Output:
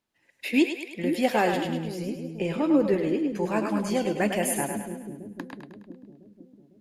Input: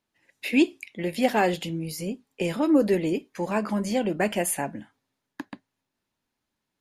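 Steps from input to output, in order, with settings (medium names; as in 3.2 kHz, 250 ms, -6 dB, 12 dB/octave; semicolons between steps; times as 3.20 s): 1.62–3.30 s: low-pass 2.7 kHz 6 dB/octave; two-band feedback delay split 400 Hz, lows 502 ms, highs 104 ms, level -6 dB; trim -1.5 dB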